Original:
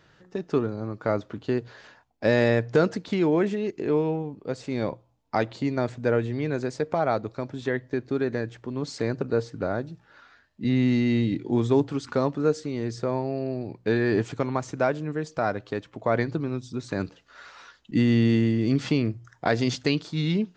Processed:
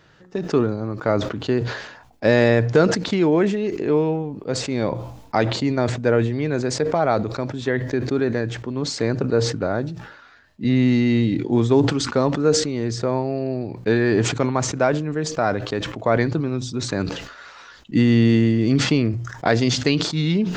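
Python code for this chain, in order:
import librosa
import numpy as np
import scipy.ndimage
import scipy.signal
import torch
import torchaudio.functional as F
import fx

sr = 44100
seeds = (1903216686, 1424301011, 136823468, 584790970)

y = fx.sustainer(x, sr, db_per_s=64.0)
y = F.gain(torch.from_numpy(y), 4.5).numpy()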